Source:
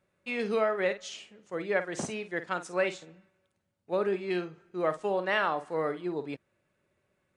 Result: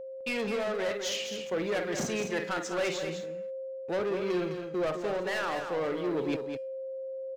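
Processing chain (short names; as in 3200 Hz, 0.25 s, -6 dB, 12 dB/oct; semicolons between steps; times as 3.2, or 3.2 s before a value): steep low-pass 7200 Hz; gate with hold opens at -54 dBFS; HPF 110 Hz 12 dB/oct; bell 1100 Hz -3.5 dB 2 oct; de-hum 404.7 Hz, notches 40; in parallel at +0.5 dB: compressor, threshold -40 dBFS, peak gain reduction 14.5 dB; on the sum: hard clip -23.5 dBFS, distortion -15 dB; sample leveller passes 2; whine 530 Hz -36 dBFS; vocal rider within 4 dB 0.5 s; on a send: echo 0.207 s -7.5 dB; on the sum: gain -2.5 dB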